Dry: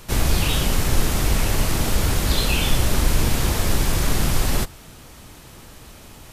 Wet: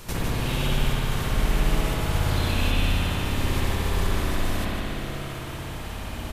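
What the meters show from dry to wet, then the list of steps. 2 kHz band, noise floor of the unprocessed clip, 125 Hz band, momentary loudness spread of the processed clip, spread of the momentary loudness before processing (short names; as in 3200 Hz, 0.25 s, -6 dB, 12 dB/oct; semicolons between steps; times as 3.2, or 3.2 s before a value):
-2.5 dB, -44 dBFS, -2.5 dB, 10 LU, 2 LU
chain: compressor 8:1, threshold -28 dBFS, peak gain reduction 17.5 dB; on a send: echo 0.151 s -6.5 dB; on the sum: spring tank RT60 3.6 s, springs 58 ms, chirp 40 ms, DRR -8 dB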